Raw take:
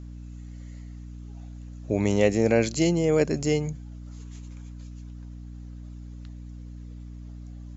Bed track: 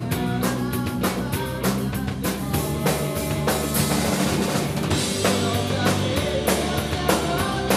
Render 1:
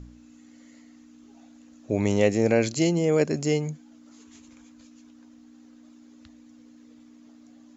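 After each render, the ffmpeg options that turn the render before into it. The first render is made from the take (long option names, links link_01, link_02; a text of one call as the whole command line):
ffmpeg -i in.wav -af "bandreject=frequency=60:width_type=h:width=4,bandreject=frequency=120:width_type=h:width=4,bandreject=frequency=180:width_type=h:width=4" out.wav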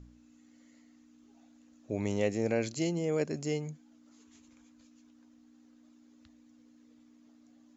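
ffmpeg -i in.wav -af "volume=-9dB" out.wav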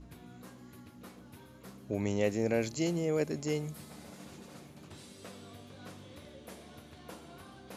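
ffmpeg -i in.wav -i bed.wav -filter_complex "[1:a]volume=-28.5dB[link_01];[0:a][link_01]amix=inputs=2:normalize=0" out.wav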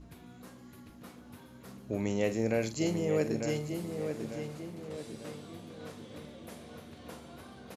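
ffmpeg -i in.wav -filter_complex "[0:a]asplit=2[link_01][link_02];[link_02]adelay=45,volume=-11.5dB[link_03];[link_01][link_03]amix=inputs=2:normalize=0,asplit=2[link_04][link_05];[link_05]adelay=896,lowpass=frequency=2700:poles=1,volume=-6.5dB,asplit=2[link_06][link_07];[link_07]adelay=896,lowpass=frequency=2700:poles=1,volume=0.48,asplit=2[link_08][link_09];[link_09]adelay=896,lowpass=frequency=2700:poles=1,volume=0.48,asplit=2[link_10][link_11];[link_11]adelay=896,lowpass=frequency=2700:poles=1,volume=0.48,asplit=2[link_12][link_13];[link_13]adelay=896,lowpass=frequency=2700:poles=1,volume=0.48,asplit=2[link_14][link_15];[link_15]adelay=896,lowpass=frequency=2700:poles=1,volume=0.48[link_16];[link_04][link_06][link_08][link_10][link_12][link_14][link_16]amix=inputs=7:normalize=0" out.wav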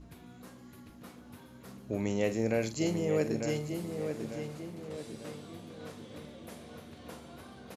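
ffmpeg -i in.wav -af anull out.wav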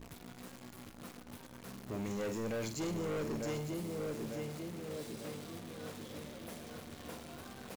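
ffmpeg -i in.wav -af "acrusher=bits=9:dc=4:mix=0:aa=0.000001,asoftclip=type=tanh:threshold=-34dB" out.wav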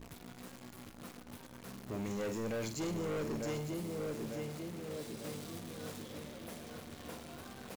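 ffmpeg -i in.wav -filter_complex "[0:a]asettb=1/sr,asplit=3[link_01][link_02][link_03];[link_01]atrim=end=5.244[link_04];[link_02]atrim=start=5.24:end=6.02,asetpts=PTS-STARTPTS,afade=type=in:duration=0.004:curve=qsin,afade=type=out:start_time=0.776:duration=0.004:curve=qsin,bass=frequency=250:gain=2,treble=frequency=4000:gain=4[link_05];[link_03]atrim=start=6.016[link_06];[link_04][link_05]acrossfade=duration=0.004:curve1=hsin:curve2=qsin[link_07];[link_07][link_06]acrossfade=duration=0.004:curve1=qsin:curve2=hsin" out.wav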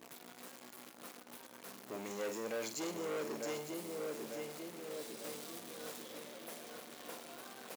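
ffmpeg -i in.wav -af "highpass=350,highshelf=frequency=9300:gain=5" out.wav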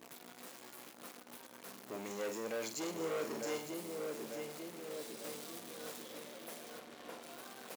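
ffmpeg -i in.wav -filter_complex "[0:a]asettb=1/sr,asplit=3[link_01][link_02][link_03];[link_01]atrim=end=0.454[link_04];[link_02]atrim=start=0.45:end=0.94,asetpts=PTS-STARTPTS,afade=type=in:duration=0.004:curve=qsin,afade=type=out:start_time=0.486:duration=0.004:curve=qsin,asplit=2[link_05][link_06];[link_06]adelay=14,volume=-5dB[link_07];[link_05][link_07]amix=inputs=2:normalize=0,atrim=end_sample=21609[link_08];[link_03]atrim=start=0.936[link_09];[link_04][link_08]acrossfade=duration=0.004:curve1=hsin:curve2=qsin[link_10];[link_10][link_09]acrossfade=duration=0.004:curve1=qsin:curve2=hsin,asettb=1/sr,asplit=3[link_11][link_12][link_13];[link_11]atrim=end=2.964[link_14];[link_12]atrim=start=2.96:end=3.66,asetpts=PTS-STARTPTS,afade=type=in:duration=0.004:curve=qsin,afade=type=out:start_time=0.696:duration=0.004:curve=qsin,asplit=2[link_15][link_16];[link_16]adelay=37,volume=-5dB[link_17];[link_15][link_17]amix=inputs=2:normalize=0,atrim=end_sample=30870[link_18];[link_13]atrim=start=3.656[link_19];[link_14][link_18]acrossfade=duration=0.004:curve1=hsin:curve2=qsin[link_20];[link_20][link_19]acrossfade=duration=0.004:curve1=qsin:curve2=hsin,asettb=1/sr,asplit=3[link_21][link_22][link_23];[link_21]atrim=end=6.794[link_24];[link_22]atrim=start=6.79:end=7.23,asetpts=PTS-STARTPTS,afade=type=in:duration=0.004:curve=qsin,afade=type=out:start_time=0.436:duration=0.004:curve=qsin,aemphasis=mode=reproduction:type=cd[link_25];[link_23]atrim=start=7.226[link_26];[link_24][link_25]acrossfade=duration=0.004:curve1=hsin:curve2=qsin[link_27];[link_27][link_26]acrossfade=duration=0.004:curve1=qsin:curve2=hsin" out.wav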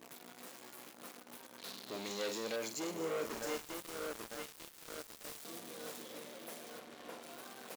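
ffmpeg -i in.wav -filter_complex "[0:a]asettb=1/sr,asplit=3[link_01][link_02][link_03];[link_01]atrim=end=1.584[link_04];[link_02]atrim=start=1.58:end=2.56,asetpts=PTS-STARTPTS,afade=type=in:duration=0.004:curve=qsin,afade=type=out:start_time=0.976:duration=0.004:curve=qsin,equalizer=frequency=4000:width_type=o:width=0.79:gain=14[link_05];[link_03]atrim=start=2.556[link_06];[link_04][link_05]acrossfade=duration=0.004:curve1=hsin:curve2=qsin[link_07];[link_07][link_06]acrossfade=duration=0.004:curve1=qsin:curve2=hsin,asettb=1/sr,asplit=3[link_08][link_09][link_10];[link_08]atrim=end=3.264[link_11];[link_09]atrim=start=3.26:end=5.45,asetpts=PTS-STARTPTS,afade=type=in:duration=0.004:curve=qsin,afade=type=out:start_time=2.186:duration=0.004:curve=qsin,aeval=exprs='val(0)*gte(abs(val(0)),0.01)':channel_layout=same[link_12];[link_10]atrim=start=5.446[link_13];[link_11][link_12]acrossfade=duration=0.004:curve1=hsin:curve2=qsin[link_14];[link_14][link_13]acrossfade=duration=0.004:curve1=qsin:curve2=hsin" out.wav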